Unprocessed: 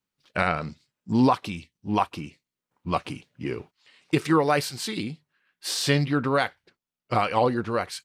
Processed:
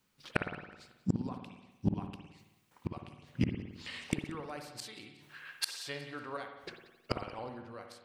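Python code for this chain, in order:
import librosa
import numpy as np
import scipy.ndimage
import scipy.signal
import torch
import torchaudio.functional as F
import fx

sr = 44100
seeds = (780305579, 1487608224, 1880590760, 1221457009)

p1 = fx.curve_eq(x, sr, hz=(120.0, 170.0, 610.0), db=(0, -7, 7), at=(4.81, 6.37))
p2 = fx.gate_flip(p1, sr, shuts_db=-26.0, range_db=-35)
p3 = fx.rider(p2, sr, range_db=4, speed_s=0.5)
p4 = p2 + (p3 * 10.0 ** (-2.0 / 20.0))
p5 = fx.tilt_shelf(p4, sr, db=-5.0, hz=1100.0, at=(2.24, 2.88))
p6 = p5 + fx.echo_feedback(p5, sr, ms=183, feedback_pct=40, wet_db=-20.5, dry=0)
p7 = fx.rev_spring(p6, sr, rt60_s=1.0, pass_ms=(54,), chirp_ms=40, drr_db=5.0)
y = p7 * 10.0 ** (6.0 / 20.0)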